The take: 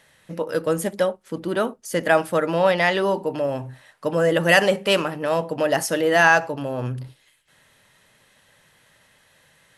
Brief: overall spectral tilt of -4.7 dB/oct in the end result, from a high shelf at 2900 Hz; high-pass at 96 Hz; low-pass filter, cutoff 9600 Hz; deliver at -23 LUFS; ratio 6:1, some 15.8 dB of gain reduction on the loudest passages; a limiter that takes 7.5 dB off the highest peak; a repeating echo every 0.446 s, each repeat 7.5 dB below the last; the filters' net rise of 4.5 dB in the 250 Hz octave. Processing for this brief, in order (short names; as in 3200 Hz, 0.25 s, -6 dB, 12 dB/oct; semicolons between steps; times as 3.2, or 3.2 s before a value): HPF 96 Hz; LPF 9600 Hz; bell 250 Hz +7 dB; high shelf 2900 Hz +5.5 dB; compressor 6:1, threshold -27 dBFS; limiter -21.5 dBFS; feedback echo 0.446 s, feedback 42%, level -7.5 dB; gain +9 dB